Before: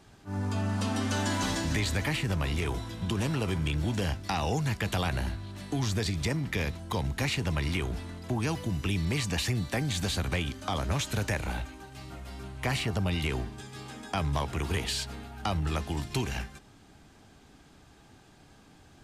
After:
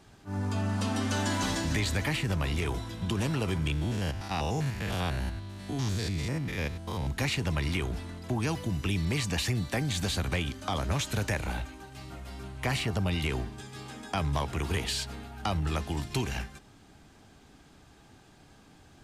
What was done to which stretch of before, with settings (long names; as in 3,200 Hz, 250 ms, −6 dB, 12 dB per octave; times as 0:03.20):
0:03.72–0:07.07: spectrum averaged block by block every 100 ms